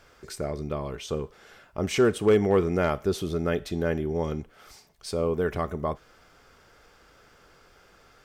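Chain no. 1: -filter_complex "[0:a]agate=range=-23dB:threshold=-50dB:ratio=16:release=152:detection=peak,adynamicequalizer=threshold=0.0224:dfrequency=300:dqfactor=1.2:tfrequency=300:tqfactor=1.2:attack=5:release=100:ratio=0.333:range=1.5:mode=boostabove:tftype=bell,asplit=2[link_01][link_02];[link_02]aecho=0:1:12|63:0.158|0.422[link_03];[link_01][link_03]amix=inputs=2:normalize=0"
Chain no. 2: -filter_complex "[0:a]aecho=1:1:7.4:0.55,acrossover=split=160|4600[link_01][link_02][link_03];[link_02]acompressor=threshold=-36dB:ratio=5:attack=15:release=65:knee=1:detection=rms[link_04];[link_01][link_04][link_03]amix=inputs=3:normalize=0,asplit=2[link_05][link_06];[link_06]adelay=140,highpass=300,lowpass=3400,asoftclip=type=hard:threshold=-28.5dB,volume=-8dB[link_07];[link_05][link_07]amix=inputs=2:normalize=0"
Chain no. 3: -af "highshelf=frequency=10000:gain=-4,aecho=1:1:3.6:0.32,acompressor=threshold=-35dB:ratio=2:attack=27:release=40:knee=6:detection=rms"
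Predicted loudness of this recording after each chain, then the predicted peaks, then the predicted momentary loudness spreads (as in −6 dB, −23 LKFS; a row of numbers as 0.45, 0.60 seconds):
−24.5, −34.5, −33.5 LKFS; −7.5, −19.5, −18.5 dBFS; 16, 13, 13 LU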